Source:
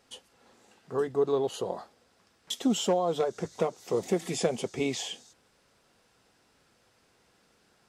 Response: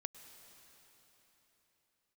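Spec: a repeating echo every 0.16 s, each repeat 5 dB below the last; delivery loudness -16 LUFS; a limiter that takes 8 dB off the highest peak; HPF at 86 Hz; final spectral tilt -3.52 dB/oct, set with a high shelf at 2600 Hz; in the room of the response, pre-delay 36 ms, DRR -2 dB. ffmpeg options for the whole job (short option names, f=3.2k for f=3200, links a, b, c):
-filter_complex "[0:a]highpass=86,highshelf=f=2.6k:g=4.5,alimiter=limit=-21.5dB:level=0:latency=1,aecho=1:1:160|320|480|640|800|960|1120:0.562|0.315|0.176|0.0988|0.0553|0.031|0.0173,asplit=2[a][b];[1:a]atrim=start_sample=2205,adelay=36[c];[b][c]afir=irnorm=-1:irlink=0,volume=5dB[d];[a][d]amix=inputs=2:normalize=0,volume=11dB"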